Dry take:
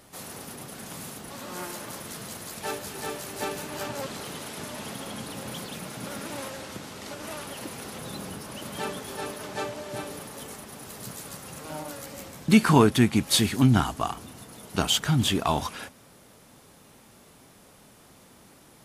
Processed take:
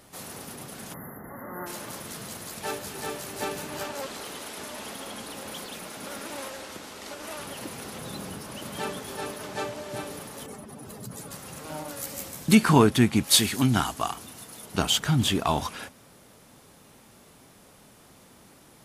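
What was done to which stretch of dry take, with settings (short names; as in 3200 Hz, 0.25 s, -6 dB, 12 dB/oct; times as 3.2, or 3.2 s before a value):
0.94–1.67 spectral delete 2100–11000 Hz
3.83–7.39 bell 130 Hz -12 dB 1.2 oct
10.46–11.31 spectral contrast raised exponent 1.7
11.97–12.55 high shelf 5700 Hz +10.5 dB
13.24–14.66 tilt +1.5 dB/oct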